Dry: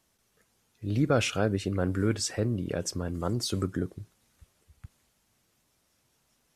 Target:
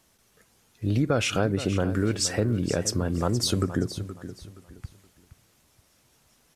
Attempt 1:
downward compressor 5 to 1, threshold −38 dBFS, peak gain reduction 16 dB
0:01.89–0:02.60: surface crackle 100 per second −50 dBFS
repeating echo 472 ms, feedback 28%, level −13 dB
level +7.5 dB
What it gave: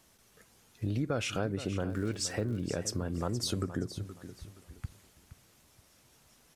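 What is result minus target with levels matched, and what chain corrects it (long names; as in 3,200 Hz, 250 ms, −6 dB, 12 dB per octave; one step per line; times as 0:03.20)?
downward compressor: peak gain reduction +8.5 dB
downward compressor 5 to 1, threshold −27.5 dBFS, peak gain reduction 8 dB
0:01.89–0:02.60: surface crackle 100 per second −50 dBFS
repeating echo 472 ms, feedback 28%, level −13 dB
level +7.5 dB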